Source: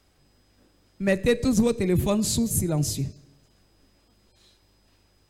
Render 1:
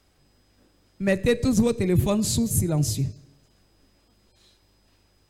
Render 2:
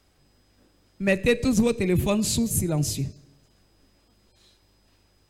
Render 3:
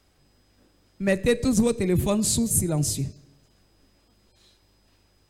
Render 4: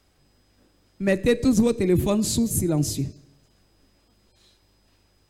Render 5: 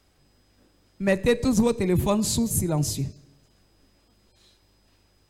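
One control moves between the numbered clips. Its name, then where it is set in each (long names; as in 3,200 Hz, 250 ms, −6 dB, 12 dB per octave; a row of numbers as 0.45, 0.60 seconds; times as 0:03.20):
dynamic equaliser, frequency: 110, 2,600, 8,800, 310, 930 Hertz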